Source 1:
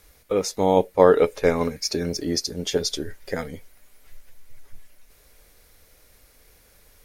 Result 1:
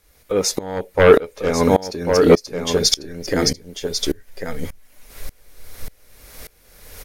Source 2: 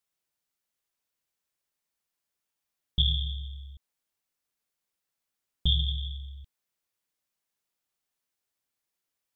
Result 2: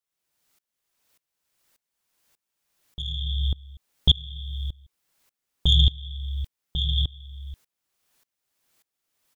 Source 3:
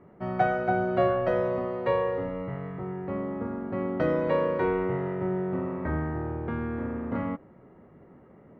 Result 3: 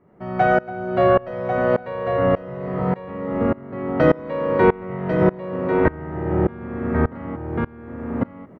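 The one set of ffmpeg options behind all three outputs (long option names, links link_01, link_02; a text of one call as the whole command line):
ffmpeg -i in.wav -filter_complex "[0:a]asplit=2[link_01][link_02];[link_02]acompressor=threshold=-38dB:ratio=6,volume=2.5dB[link_03];[link_01][link_03]amix=inputs=2:normalize=0,aecho=1:1:1095:0.596,aeval=exprs='0.944*sin(PI/2*2.51*val(0)/0.944)':channel_layout=same,aeval=exprs='val(0)*pow(10,-25*if(lt(mod(-1.7*n/s,1),2*abs(-1.7)/1000),1-mod(-1.7*n/s,1)/(2*abs(-1.7)/1000),(mod(-1.7*n/s,1)-2*abs(-1.7)/1000)/(1-2*abs(-1.7)/1000))/20)':channel_layout=same" out.wav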